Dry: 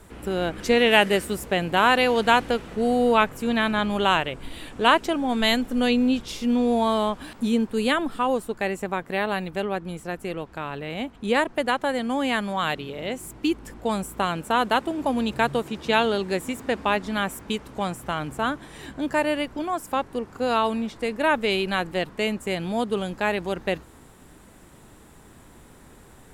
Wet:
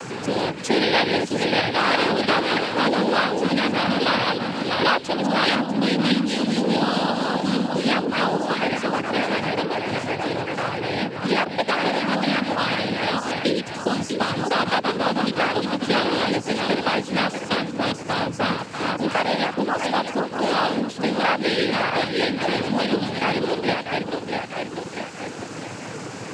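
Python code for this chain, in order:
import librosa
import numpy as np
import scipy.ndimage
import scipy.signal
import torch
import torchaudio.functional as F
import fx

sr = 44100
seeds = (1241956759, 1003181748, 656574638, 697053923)

y = fx.reverse_delay_fb(x, sr, ms=322, feedback_pct=58, wet_db=-4.5)
y = fx.dynamic_eq(y, sr, hz=3300.0, q=2.8, threshold_db=-40.0, ratio=4.0, max_db=6)
y = fx.noise_vocoder(y, sr, seeds[0], bands=8)
y = fx.band_squash(y, sr, depth_pct=70)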